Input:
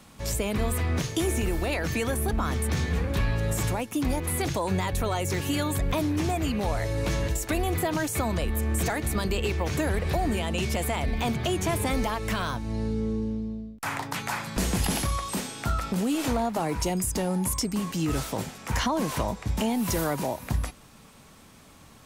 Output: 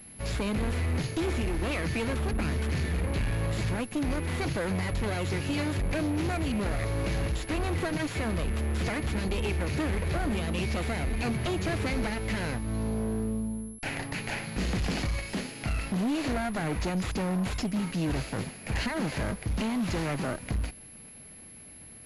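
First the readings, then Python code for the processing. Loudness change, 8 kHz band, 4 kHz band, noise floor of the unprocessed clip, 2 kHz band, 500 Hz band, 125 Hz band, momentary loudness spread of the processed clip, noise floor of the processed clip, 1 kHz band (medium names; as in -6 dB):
-2.5 dB, -9.5 dB, -3.5 dB, -52 dBFS, -1.0 dB, -3.5 dB, -1.5 dB, 5 LU, -48 dBFS, -6.0 dB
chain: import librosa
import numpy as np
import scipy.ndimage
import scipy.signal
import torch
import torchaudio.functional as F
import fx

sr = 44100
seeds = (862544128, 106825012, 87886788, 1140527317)

y = fx.lower_of_two(x, sr, delay_ms=0.44)
y = np.clip(10.0 ** (25.0 / 20.0) * y, -1.0, 1.0) / 10.0 ** (25.0 / 20.0)
y = fx.pwm(y, sr, carrier_hz=11000.0)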